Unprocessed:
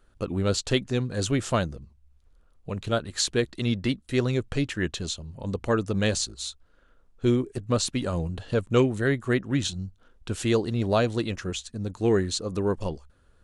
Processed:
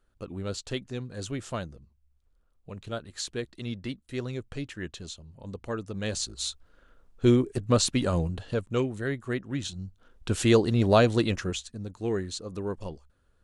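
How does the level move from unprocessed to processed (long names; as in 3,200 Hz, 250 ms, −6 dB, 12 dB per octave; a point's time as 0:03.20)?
0:06.00 −9 dB
0:06.42 +2 dB
0:08.17 +2 dB
0:08.73 −6.5 dB
0:09.65 −6.5 dB
0:10.31 +3 dB
0:11.34 +3 dB
0:11.91 −7 dB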